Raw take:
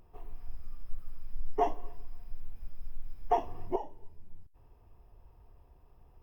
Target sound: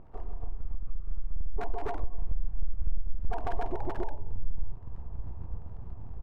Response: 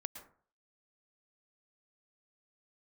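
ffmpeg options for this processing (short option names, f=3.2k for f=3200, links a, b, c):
-af "lowpass=1.3k,aecho=1:1:151.6|277:0.708|0.891,alimiter=level_in=0.5dB:limit=-24dB:level=0:latency=1:release=142,volume=-0.5dB,acompressor=threshold=-37dB:ratio=6,asubboost=boost=3:cutoff=120,aeval=exprs='abs(val(0))':c=same,volume=8.5dB"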